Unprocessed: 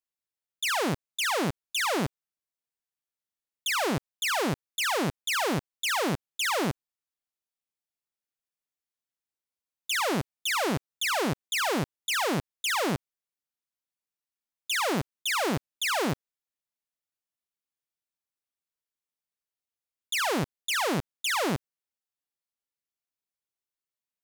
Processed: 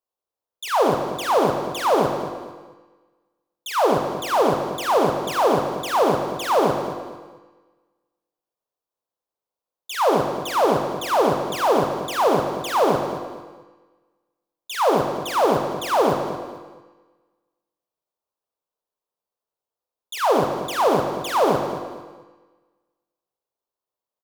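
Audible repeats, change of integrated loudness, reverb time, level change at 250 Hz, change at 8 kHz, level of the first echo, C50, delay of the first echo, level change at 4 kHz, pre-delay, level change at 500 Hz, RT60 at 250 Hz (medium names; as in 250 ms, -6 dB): 3, +7.0 dB, 1.4 s, +6.0 dB, -2.0 dB, -12.0 dB, 4.5 dB, 225 ms, -1.0 dB, 20 ms, +13.5 dB, 1.4 s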